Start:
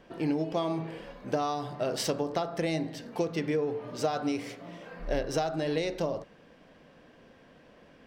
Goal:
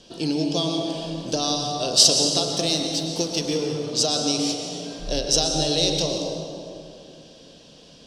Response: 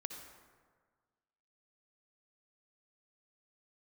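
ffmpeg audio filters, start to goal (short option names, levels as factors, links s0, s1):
-filter_complex "[0:a]lowpass=5600,acrossover=split=650[s0][s1];[s0]acontrast=55[s2];[s2][s1]amix=inputs=2:normalize=0,aexciter=amount=10.7:drive=8.9:freq=3200,asettb=1/sr,asplit=3[s3][s4][s5];[s3]atrim=end=2.524[s6];[s4]atrim=start=2.52:end=3.83,asetpts=PTS-STARTPTS,afade=t=in:d=0.004:c=qsin,afade=t=out:st=1.306:d=0.004:c=qsin,aeval=exprs='sgn(val(0))*max(abs(val(0))-0.0106,0)':c=same[s7];[s5]atrim=start=3.826[s8];[s6][s7]acrossfade=d=0.004:c1=hsin:c2=qsin[s9];[s9][s8]acrossfade=d=0.004:c1=qsin:c2=hsin[s10];[1:a]atrim=start_sample=2205,asetrate=23814,aresample=44100[s11];[s10][s11]afir=irnorm=-1:irlink=0,volume=0.794"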